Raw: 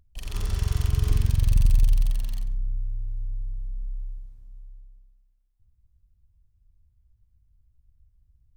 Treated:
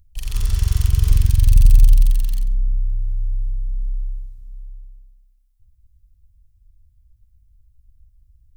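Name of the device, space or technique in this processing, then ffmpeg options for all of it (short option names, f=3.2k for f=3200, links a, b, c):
smiley-face EQ: -af "lowshelf=f=120:g=5.5,equalizer=f=430:t=o:w=2.9:g=-8.5,highshelf=f=6.3k:g=6.5,volume=4dB"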